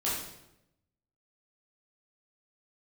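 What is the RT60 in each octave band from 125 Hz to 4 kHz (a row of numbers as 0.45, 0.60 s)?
1.2, 1.0, 0.95, 0.80, 0.75, 0.70 s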